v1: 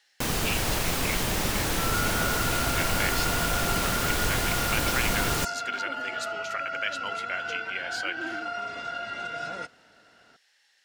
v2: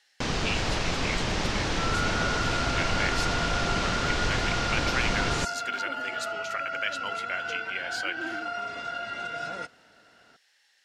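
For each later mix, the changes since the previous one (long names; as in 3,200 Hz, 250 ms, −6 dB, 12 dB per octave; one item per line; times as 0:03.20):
first sound: add low-pass filter 6,000 Hz 24 dB per octave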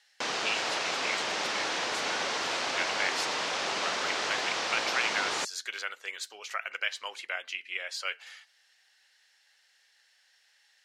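second sound: muted
master: add high-pass filter 520 Hz 12 dB per octave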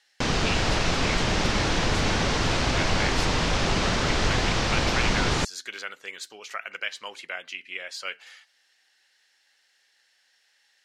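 background +4.0 dB
master: remove high-pass filter 520 Hz 12 dB per octave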